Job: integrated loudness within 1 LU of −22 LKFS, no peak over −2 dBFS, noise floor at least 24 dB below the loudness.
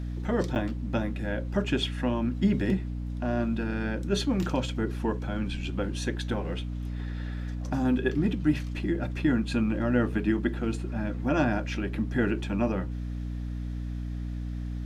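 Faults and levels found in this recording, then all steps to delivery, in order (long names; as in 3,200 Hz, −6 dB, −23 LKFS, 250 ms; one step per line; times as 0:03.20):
number of dropouts 1; longest dropout 8.4 ms; mains hum 60 Hz; hum harmonics up to 300 Hz; level of the hum −31 dBFS; integrated loudness −29.5 LKFS; sample peak −12.0 dBFS; target loudness −22.0 LKFS
→ repair the gap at 0:00.55, 8.4 ms
hum removal 60 Hz, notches 5
level +7.5 dB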